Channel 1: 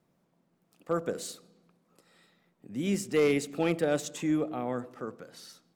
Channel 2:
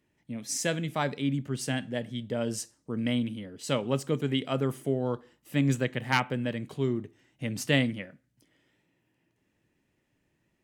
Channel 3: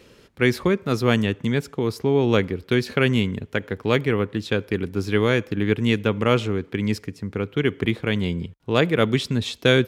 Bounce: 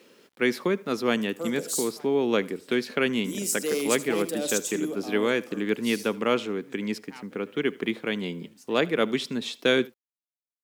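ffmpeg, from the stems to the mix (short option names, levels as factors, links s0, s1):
-filter_complex "[0:a]equalizer=f=1600:t=o:w=1.7:g=-10.5,crystalizer=i=5:c=0,adelay=500,volume=0.75,asplit=2[s0][s1];[s1]volume=0.237[s2];[1:a]adelay=1000,volume=0.15[s3];[2:a]volume=0.631,asplit=3[s4][s5][s6];[s5]volume=0.0708[s7];[s6]apad=whole_len=513014[s8];[s3][s8]sidechaincompress=threshold=0.0158:ratio=8:attack=36:release=252[s9];[s2][s7]amix=inputs=2:normalize=0,aecho=0:1:77:1[s10];[s0][s9][s4][s10]amix=inputs=4:normalize=0,highpass=f=200:w=0.5412,highpass=f=200:w=1.3066,acrusher=bits=10:mix=0:aa=0.000001"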